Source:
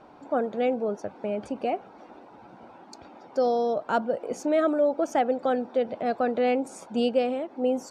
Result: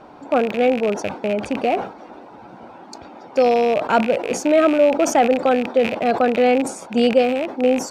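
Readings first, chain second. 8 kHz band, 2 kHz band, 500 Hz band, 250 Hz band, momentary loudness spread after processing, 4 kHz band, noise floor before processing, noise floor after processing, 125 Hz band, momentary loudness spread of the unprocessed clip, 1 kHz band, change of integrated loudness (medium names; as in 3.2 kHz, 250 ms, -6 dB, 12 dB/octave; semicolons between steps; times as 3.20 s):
+15.0 dB, +11.5 dB, +8.0 dB, +8.5 dB, 7 LU, +11.0 dB, -50 dBFS, -42 dBFS, no reading, 8 LU, +8.5 dB, +8.5 dB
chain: rattle on loud lows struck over -44 dBFS, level -26 dBFS; decay stretcher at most 120 dB/s; trim +8 dB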